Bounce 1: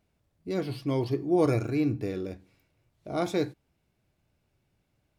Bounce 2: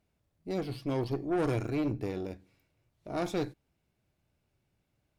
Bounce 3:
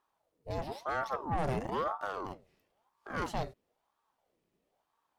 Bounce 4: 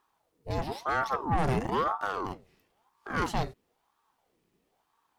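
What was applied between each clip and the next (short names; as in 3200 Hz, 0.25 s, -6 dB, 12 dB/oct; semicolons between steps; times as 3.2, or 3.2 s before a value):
tube stage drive 25 dB, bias 0.65
ring modulator with a swept carrier 650 Hz, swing 60%, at 1 Hz
bell 590 Hz -7.5 dB 0.39 oct; gain +6.5 dB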